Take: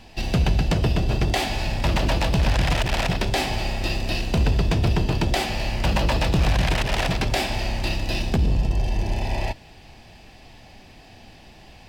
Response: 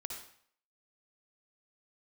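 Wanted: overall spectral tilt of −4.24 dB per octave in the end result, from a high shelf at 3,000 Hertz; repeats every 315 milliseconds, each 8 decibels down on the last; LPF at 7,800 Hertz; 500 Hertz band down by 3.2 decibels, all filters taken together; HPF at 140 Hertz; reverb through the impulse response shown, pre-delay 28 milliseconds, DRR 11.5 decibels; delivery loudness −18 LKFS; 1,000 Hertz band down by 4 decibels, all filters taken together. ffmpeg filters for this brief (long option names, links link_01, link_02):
-filter_complex "[0:a]highpass=140,lowpass=7800,equalizer=frequency=500:width_type=o:gain=-3,equalizer=frequency=1000:width_type=o:gain=-3.5,highshelf=frequency=3000:gain=-5.5,aecho=1:1:315|630|945|1260|1575:0.398|0.159|0.0637|0.0255|0.0102,asplit=2[link_01][link_02];[1:a]atrim=start_sample=2205,adelay=28[link_03];[link_02][link_03]afir=irnorm=-1:irlink=0,volume=-10dB[link_04];[link_01][link_04]amix=inputs=2:normalize=0,volume=9.5dB"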